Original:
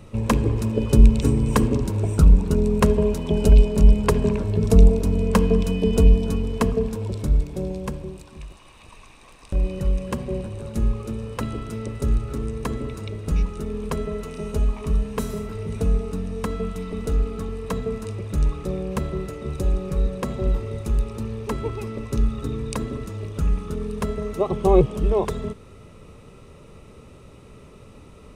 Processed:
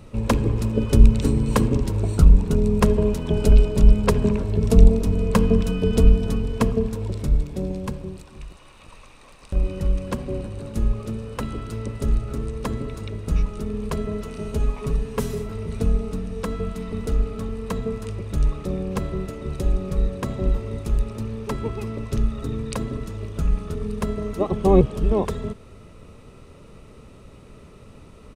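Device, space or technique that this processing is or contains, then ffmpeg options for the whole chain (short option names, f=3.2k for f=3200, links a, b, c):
octave pedal: -filter_complex "[0:a]asettb=1/sr,asplit=3[a][b][c];[a]atrim=end=14.594[d];[b]atrim=start=14.59:end=15.44,asetpts=PTS-STARTPTS,afade=t=in:d=0.004:c=qsin,afade=t=out:st=0.846:d=0.004:c=qsin,aecho=1:1:7.2:0.59,atrim=end_sample=37485[e];[c]atrim=start=15.436[f];[d][e]acrossfade=d=0.004:c1=hsin:c2=qsin[g];[g][f]acrossfade=d=0.004:c1=qsin:c2=hsin,asplit=2[h][i];[i]asetrate=22050,aresample=44100,atempo=2,volume=-5dB[j];[h][j]amix=inputs=2:normalize=0,volume=-1dB"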